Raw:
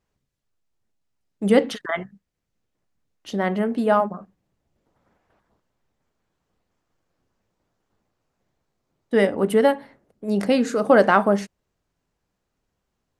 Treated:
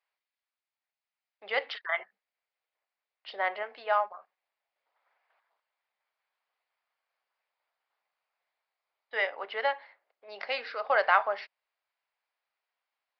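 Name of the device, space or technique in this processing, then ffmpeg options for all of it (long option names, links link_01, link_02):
musical greeting card: -filter_complex "[0:a]aresample=11025,aresample=44100,highpass=frequency=690:width=0.5412,highpass=frequency=690:width=1.3066,equalizer=frequency=2200:width_type=o:width=0.5:gain=6.5,asettb=1/sr,asplit=3[link_01][link_02][link_03];[link_01]atrim=end=1.994[link_04];[link_02]atrim=start=1.99:end=3.63,asetpts=PTS-STARTPTS,afade=type=in:duration=0.004:curve=qsin,afade=type=out:start_time=1.636:duration=0.004:curve=qsin,equalizer=frequency=390:width_type=o:width=2.2:gain=6[link_05];[link_03]atrim=start=3.626[link_06];[link_04][link_05]acrossfade=duration=0.004:curve1=hsin:curve2=qsin[link_07];[link_07][link_06]acrossfade=duration=0.004:curve1=qsin:curve2=hsin,volume=-5.5dB"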